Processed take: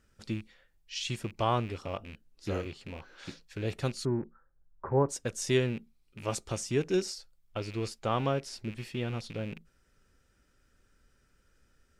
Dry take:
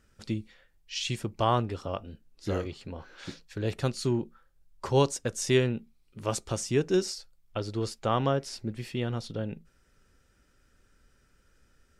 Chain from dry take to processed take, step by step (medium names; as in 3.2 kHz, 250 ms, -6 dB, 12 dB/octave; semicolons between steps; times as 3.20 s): rattle on loud lows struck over -42 dBFS, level -33 dBFS; 4.05–5.09 s: steep low-pass 1.7 kHz 48 dB/octave; trim -3 dB